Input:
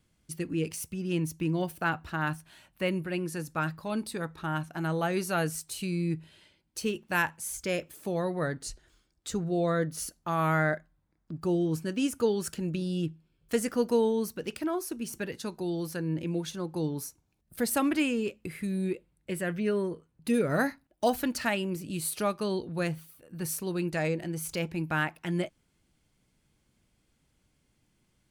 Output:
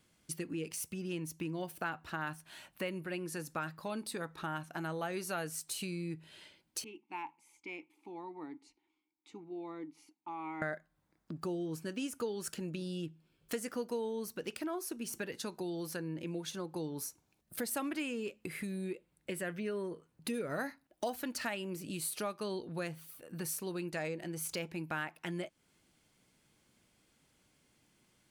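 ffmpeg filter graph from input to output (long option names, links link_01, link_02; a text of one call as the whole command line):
ffmpeg -i in.wav -filter_complex "[0:a]asettb=1/sr,asplit=3[link_01][link_02][link_03];[link_01]atrim=end=6.844[link_04];[link_02]atrim=start=6.84:end=10.62,asetpts=PTS-STARTPTS,afade=type=in:duration=0.004:curve=qsin,afade=type=out:start_time=3.776:duration=0.004:curve=qsin,asplit=3[link_05][link_06][link_07];[link_05]bandpass=frequency=300:width_type=q:width=8,volume=0dB[link_08];[link_06]bandpass=frequency=870:width_type=q:width=8,volume=-6dB[link_09];[link_07]bandpass=frequency=2240:width_type=q:width=8,volume=-9dB[link_10];[link_08][link_09][link_10]amix=inputs=3:normalize=0,equalizer=frequency=130:width_type=o:width=2.6:gain=-7.5[link_11];[link_03]atrim=start=10.616[link_12];[link_04][link_11]acrossfade=duration=0.004:curve1=hsin:curve2=qsin[link_13];[link_13][link_12]acrossfade=duration=0.004:curve1=qsin:curve2=hsin,lowshelf=frequency=240:gain=-4.5,acompressor=threshold=-42dB:ratio=3,lowshelf=frequency=84:gain=-11.5,volume=4dB" out.wav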